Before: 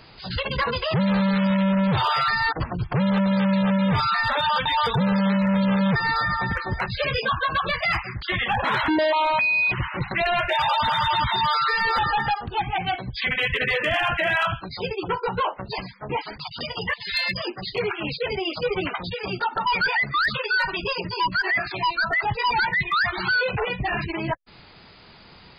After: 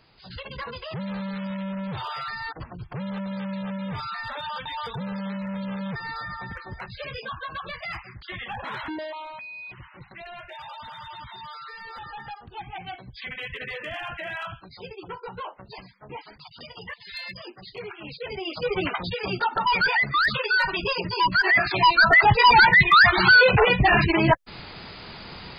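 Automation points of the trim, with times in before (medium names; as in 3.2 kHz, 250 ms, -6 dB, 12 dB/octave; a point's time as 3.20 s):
8.88 s -11 dB
9.36 s -18.5 dB
11.86 s -18.5 dB
12.72 s -11.5 dB
17.99 s -11.5 dB
18.84 s +0.5 dB
21.06 s +0.5 dB
22.10 s +8 dB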